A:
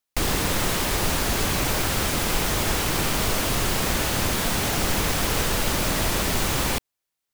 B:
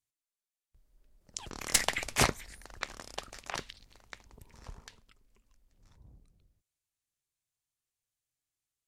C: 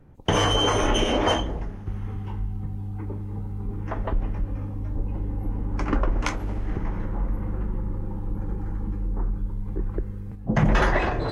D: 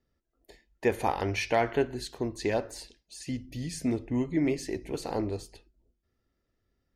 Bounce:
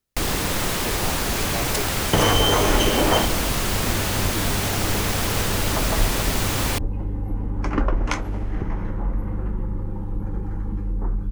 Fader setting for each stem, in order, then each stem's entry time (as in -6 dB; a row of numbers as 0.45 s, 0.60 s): 0.0 dB, -4.5 dB, +2.0 dB, -8.0 dB; 0.00 s, 0.00 s, 1.85 s, 0.00 s